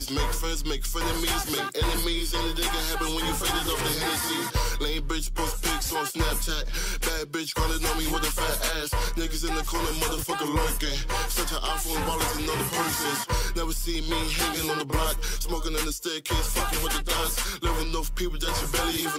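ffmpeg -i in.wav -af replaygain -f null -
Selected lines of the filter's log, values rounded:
track_gain = +9.5 dB
track_peak = 0.190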